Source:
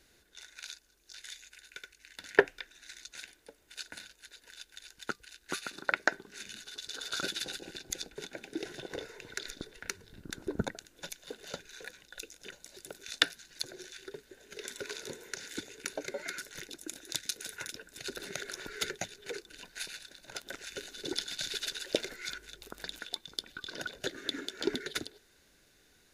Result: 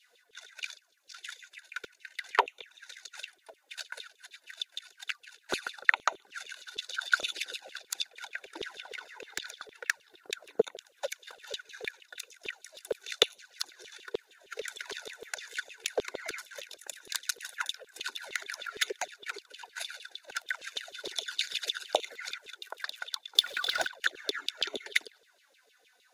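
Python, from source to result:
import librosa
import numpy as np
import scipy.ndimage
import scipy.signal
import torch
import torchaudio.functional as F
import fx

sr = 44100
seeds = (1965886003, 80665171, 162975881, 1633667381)

y = fx.env_flanger(x, sr, rest_ms=4.3, full_db=-31.5)
y = fx.transient(y, sr, attack_db=6, sustain_db=0)
y = fx.filter_lfo_highpass(y, sr, shape='saw_down', hz=6.5, low_hz=400.0, high_hz=3600.0, q=6.8)
y = fx.power_curve(y, sr, exponent=0.7, at=(23.35, 23.87))
y = y * 10.0 ** (-1.5 / 20.0)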